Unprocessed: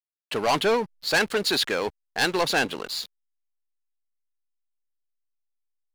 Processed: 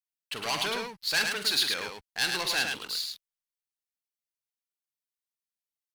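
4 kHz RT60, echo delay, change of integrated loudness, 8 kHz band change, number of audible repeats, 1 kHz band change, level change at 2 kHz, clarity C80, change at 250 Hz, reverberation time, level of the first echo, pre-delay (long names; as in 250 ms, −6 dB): no reverb audible, 46 ms, −3.5 dB, 0.0 dB, 2, −9.0 dB, −4.0 dB, no reverb audible, −12.0 dB, no reverb audible, −10.0 dB, no reverb audible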